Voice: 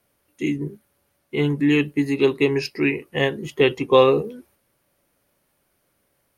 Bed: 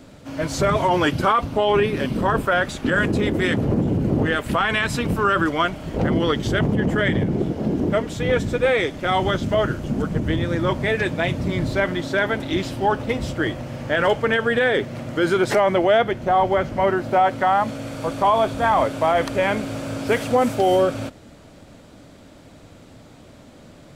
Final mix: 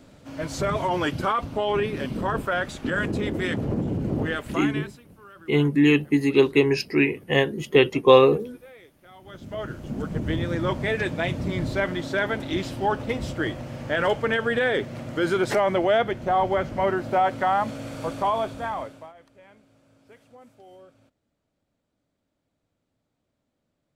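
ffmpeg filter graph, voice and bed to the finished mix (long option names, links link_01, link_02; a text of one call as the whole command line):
ffmpeg -i stem1.wav -i stem2.wav -filter_complex "[0:a]adelay=4150,volume=0.5dB[link_01];[1:a]volume=19dB,afade=type=out:start_time=4.3:duration=0.7:silence=0.0707946,afade=type=in:start_time=9.23:duration=1.1:silence=0.0562341,afade=type=out:start_time=18.02:duration=1.11:silence=0.0398107[link_02];[link_01][link_02]amix=inputs=2:normalize=0" out.wav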